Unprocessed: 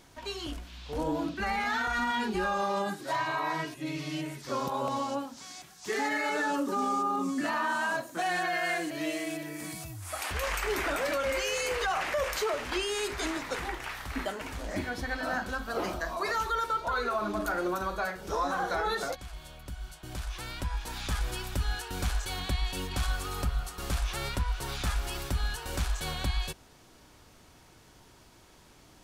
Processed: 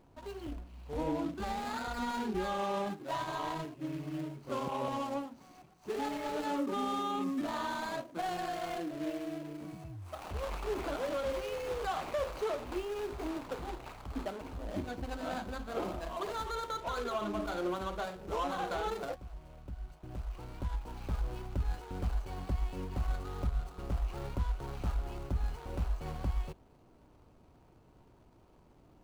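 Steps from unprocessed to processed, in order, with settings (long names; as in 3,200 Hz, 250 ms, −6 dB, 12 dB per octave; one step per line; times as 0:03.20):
running median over 25 samples
level −2.5 dB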